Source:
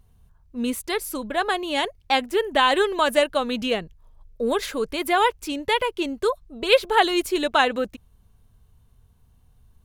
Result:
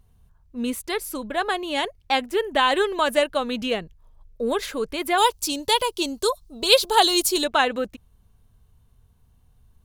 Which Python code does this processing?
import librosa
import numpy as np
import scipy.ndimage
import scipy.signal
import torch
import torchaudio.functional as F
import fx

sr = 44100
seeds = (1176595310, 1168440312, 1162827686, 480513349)

y = fx.curve_eq(x, sr, hz=(560.0, 940.0, 2000.0, 4400.0), db=(0, 3, -6, 13), at=(5.17, 7.43), fade=0.02)
y = F.gain(torch.from_numpy(y), -1.0).numpy()